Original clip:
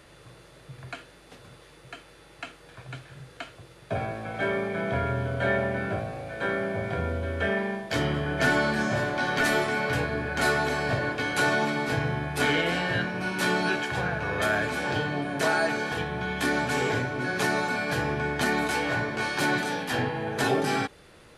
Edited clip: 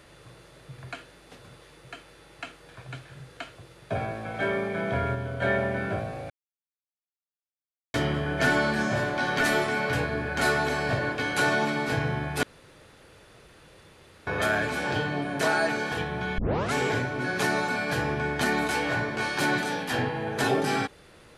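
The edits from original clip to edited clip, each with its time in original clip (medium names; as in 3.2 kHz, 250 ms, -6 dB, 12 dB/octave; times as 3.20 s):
5.15–5.42 s: gain -3.5 dB
6.30–7.94 s: mute
12.43–14.27 s: room tone
16.38 s: tape start 0.35 s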